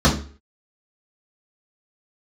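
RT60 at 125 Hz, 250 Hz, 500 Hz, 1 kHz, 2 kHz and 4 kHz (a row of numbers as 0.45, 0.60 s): 0.40, 0.40, 0.45, 0.40, 0.40, 0.35 s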